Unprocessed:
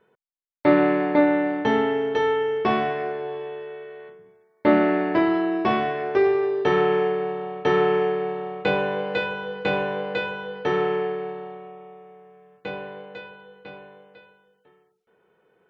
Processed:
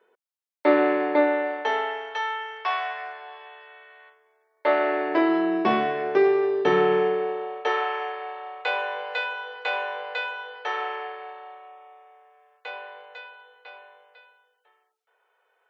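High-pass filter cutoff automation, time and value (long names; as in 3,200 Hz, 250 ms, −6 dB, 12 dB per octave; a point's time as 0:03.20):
high-pass filter 24 dB per octave
0:01.13 320 Hz
0:02.26 810 Hz
0:04.04 810 Hz
0:05.08 360 Hz
0:05.56 160 Hz
0:06.95 160 Hz
0:07.85 650 Hz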